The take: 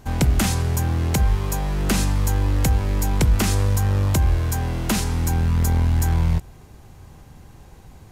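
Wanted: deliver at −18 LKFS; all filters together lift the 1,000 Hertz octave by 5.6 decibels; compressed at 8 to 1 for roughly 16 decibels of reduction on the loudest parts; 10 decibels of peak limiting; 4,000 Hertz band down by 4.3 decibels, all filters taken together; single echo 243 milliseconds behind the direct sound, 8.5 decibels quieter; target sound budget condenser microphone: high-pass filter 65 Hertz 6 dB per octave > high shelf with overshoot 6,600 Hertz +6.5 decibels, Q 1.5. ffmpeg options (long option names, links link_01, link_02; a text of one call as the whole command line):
ffmpeg -i in.wav -af "equalizer=frequency=1000:width_type=o:gain=7.5,equalizer=frequency=4000:width_type=o:gain=-4.5,acompressor=threshold=-31dB:ratio=8,alimiter=level_in=5.5dB:limit=-24dB:level=0:latency=1,volume=-5.5dB,highpass=frequency=65:poles=1,highshelf=frequency=6600:width_type=q:width=1.5:gain=6.5,aecho=1:1:243:0.376,volume=20.5dB" out.wav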